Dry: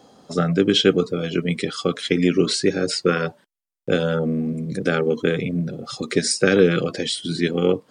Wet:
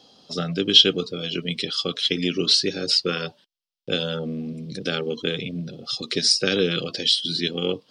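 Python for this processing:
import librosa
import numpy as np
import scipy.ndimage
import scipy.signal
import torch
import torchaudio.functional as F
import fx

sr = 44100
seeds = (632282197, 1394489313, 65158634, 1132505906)

y = fx.band_shelf(x, sr, hz=3900.0, db=14.0, octaves=1.3)
y = y * 10.0 ** (-7.0 / 20.0)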